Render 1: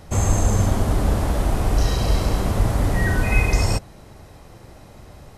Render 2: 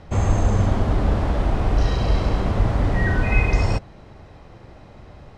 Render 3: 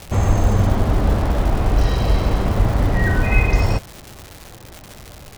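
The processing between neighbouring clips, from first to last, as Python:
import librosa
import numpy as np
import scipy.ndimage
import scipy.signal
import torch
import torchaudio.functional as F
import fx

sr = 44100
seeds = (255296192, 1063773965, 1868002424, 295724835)

y1 = scipy.signal.sosfilt(scipy.signal.butter(2, 3700.0, 'lowpass', fs=sr, output='sos'), x)
y2 = fx.dmg_crackle(y1, sr, seeds[0], per_s=390.0, level_db=-29.0)
y2 = y2 * librosa.db_to_amplitude(2.5)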